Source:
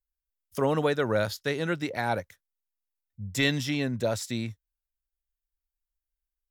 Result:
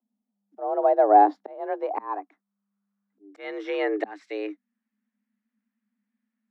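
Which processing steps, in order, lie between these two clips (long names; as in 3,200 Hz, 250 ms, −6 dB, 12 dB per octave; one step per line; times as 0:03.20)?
volume swells 738 ms
frequency shifter +200 Hz
low-pass filter sweep 750 Hz → 1,900 Hz, 0:01.01–0:04.10
level +6.5 dB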